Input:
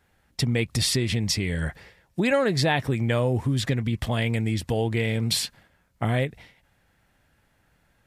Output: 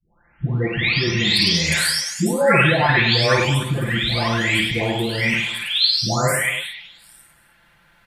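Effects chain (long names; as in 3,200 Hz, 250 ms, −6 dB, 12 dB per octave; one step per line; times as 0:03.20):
every frequency bin delayed by itself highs late, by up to 970 ms
flat-topped bell 2,000 Hz +8.5 dB 2.6 octaves
multi-tap delay 52/101/207/307 ms −6/−6.5/−16.5/−17.5 dB
level +5.5 dB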